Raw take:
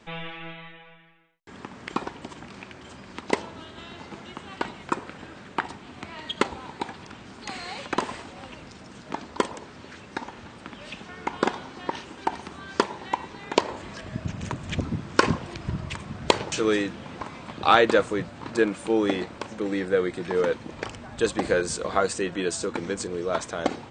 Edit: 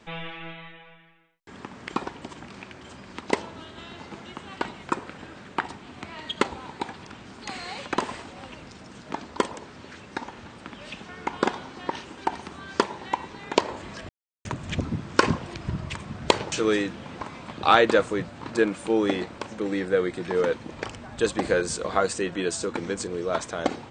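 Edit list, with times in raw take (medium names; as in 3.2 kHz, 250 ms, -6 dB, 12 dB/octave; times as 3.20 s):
14.09–14.45 s: mute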